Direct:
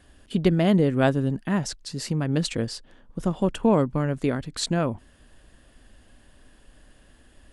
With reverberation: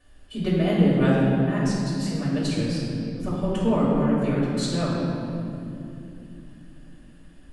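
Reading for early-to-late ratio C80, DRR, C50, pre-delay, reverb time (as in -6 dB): -0.5 dB, -9.5 dB, -2.0 dB, 3 ms, 2.8 s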